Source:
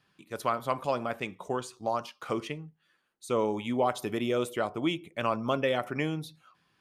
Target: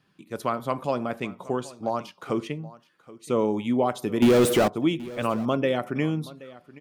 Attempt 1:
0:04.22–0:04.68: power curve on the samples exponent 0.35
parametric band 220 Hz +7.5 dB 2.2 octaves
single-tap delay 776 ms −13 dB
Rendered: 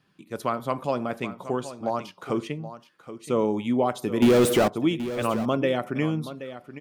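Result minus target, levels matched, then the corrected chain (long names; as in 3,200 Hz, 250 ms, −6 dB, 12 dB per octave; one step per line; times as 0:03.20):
echo-to-direct +6.5 dB
0:04.22–0:04.68: power curve on the samples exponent 0.35
parametric band 220 Hz +7.5 dB 2.2 octaves
single-tap delay 776 ms −19.5 dB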